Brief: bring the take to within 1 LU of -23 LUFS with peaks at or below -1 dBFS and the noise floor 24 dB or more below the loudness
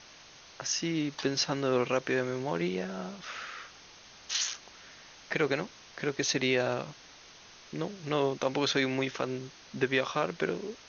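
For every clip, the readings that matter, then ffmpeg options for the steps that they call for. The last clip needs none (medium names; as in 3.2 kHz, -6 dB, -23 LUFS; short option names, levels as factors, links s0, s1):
noise floor -53 dBFS; noise floor target -56 dBFS; loudness -31.5 LUFS; peak level -13.5 dBFS; loudness target -23.0 LUFS
-> -af "afftdn=nr=6:nf=-53"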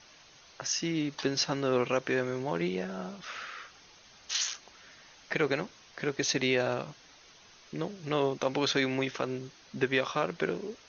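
noise floor -57 dBFS; loudness -31.5 LUFS; peak level -13.5 dBFS; loudness target -23.0 LUFS
-> -af "volume=2.66"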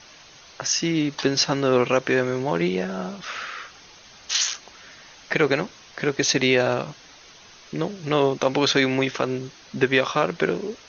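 loudness -23.0 LUFS; peak level -5.0 dBFS; noise floor -48 dBFS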